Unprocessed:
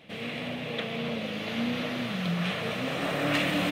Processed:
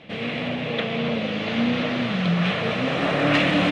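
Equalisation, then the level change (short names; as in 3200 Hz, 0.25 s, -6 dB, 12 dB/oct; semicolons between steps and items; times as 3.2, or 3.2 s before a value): air absorption 110 m; +8.0 dB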